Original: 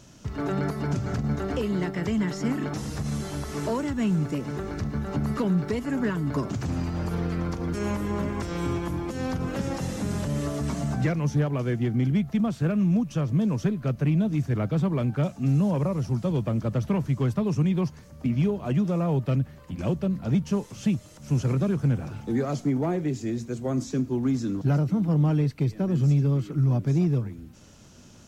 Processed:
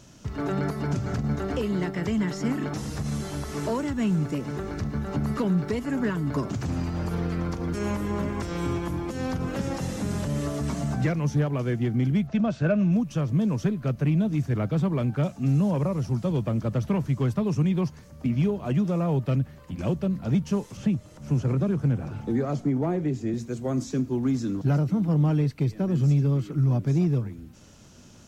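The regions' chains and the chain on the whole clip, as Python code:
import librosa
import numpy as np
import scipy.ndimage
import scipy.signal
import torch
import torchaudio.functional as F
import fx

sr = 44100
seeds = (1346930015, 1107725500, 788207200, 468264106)

y = fx.chain(x, sr, fx.lowpass(hz=6500.0, slope=24),
    fx.small_body(hz=(610.0, 1500.0, 2600.0), ring_ms=45, db=11), at=(12.27, 12.93))
y = fx.chain(y, sr, fx.high_shelf(hz=2400.0, db=-8.0),
    fx.band_squash(depth_pct=40), at=(20.77, 23.34))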